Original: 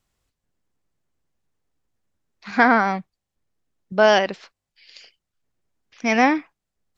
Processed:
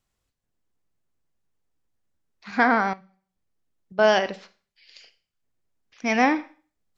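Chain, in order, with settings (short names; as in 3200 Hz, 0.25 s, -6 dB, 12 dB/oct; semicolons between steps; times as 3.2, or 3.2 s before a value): vocal rider; Schroeder reverb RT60 0.4 s, combs from 33 ms, DRR 13.5 dB; 2.93–3.99 compressor 2.5:1, threshold -48 dBFS, peak gain reduction 14.5 dB; gain -1 dB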